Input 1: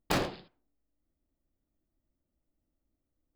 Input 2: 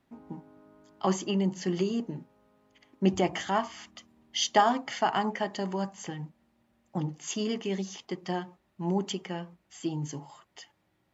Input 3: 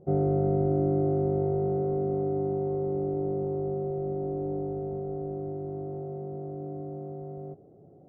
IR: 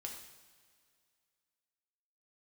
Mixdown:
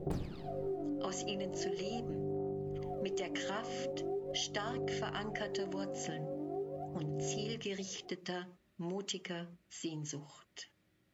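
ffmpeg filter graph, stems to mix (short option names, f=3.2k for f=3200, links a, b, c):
-filter_complex "[0:a]lowshelf=f=430:g=11,volume=1.5dB,asplit=2[a][b];[b]volume=-18dB[c];[1:a]acrossover=split=440|3000[d][e][f];[d]acompressor=threshold=-41dB:ratio=6[g];[g][e][f]amix=inputs=3:normalize=0,equalizer=f=870:t=o:w=0.71:g=-12.5,volume=0dB[h];[2:a]bandreject=f=50:t=h:w=6,bandreject=f=100:t=h:w=6,bandreject=f=150:t=h:w=6,acompressor=threshold=-30dB:ratio=6,volume=-4dB[i];[a][i]amix=inputs=2:normalize=0,aphaser=in_gain=1:out_gain=1:delay=4:decay=0.8:speed=0.41:type=sinusoidal,acompressor=threshold=-32dB:ratio=2,volume=0dB[j];[3:a]atrim=start_sample=2205[k];[c][k]afir=irnorm=-1:irlink=0[l];[h][j][l]amix=inputs=3:normalize=0,acompressor=threshold=-35dB:ratio=6"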